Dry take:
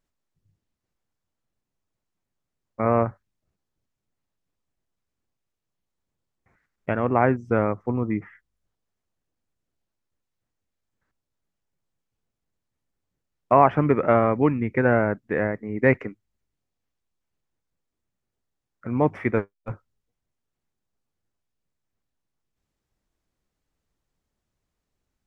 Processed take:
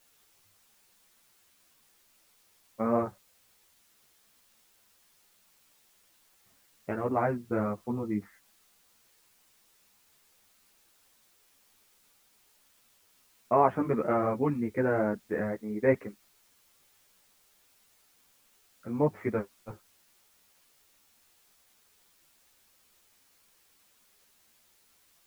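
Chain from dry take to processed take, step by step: low-pass 1.1 kHz 6 dB/octave; bass shelf 76 Hz -11 dB; word length cut 10-bit, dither triangular; three-phase chorus; trim -2 dB

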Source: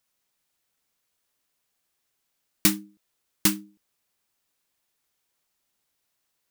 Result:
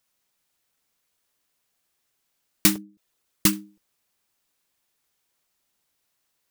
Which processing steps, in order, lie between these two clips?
2.78–3.53 s: resonances exaggerated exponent 1.5; crackling interface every 0.34 s, samples 256, repeat, from 0.37 s; trim +2 dB

